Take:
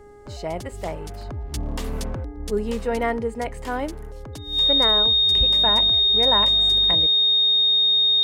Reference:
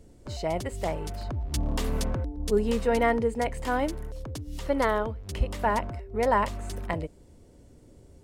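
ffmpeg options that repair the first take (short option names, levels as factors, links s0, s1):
-af "bandreject=f=412:t=h:w=4,bandreject=f=824:t=h:w=4,bandreject=f=1236:t=h:w=4,bandreject=f=1648:t=h:w=4,bandreject=f=2060:t=h:w=4,bandreject=f=3700:w=30"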